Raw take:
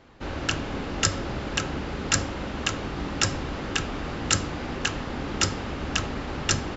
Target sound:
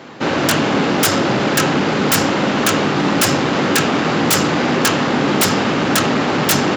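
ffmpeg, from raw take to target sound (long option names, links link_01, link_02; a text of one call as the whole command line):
ffmpeg -i in.wav -af "aeval=exprs='0.668*sin(PI/2*10*val(0)/0.668)':channel_layout=same,highpass=frequency=140:width=0.5412,highpass=frequency=140:width=1.3066,volume=-5.5dB" out.wav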